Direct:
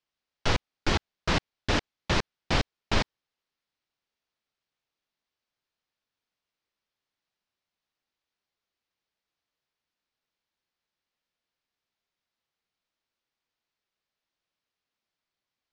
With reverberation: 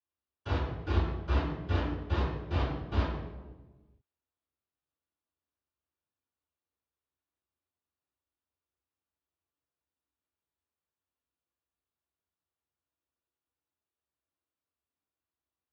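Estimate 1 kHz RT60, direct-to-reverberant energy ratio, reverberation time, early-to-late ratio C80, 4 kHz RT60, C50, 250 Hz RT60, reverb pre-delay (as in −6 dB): 1.1 s, −20.0 dB, 1.2 s, 4.0 dB, 0.80 s, 1.0 dB, 1.6 s, 3 ms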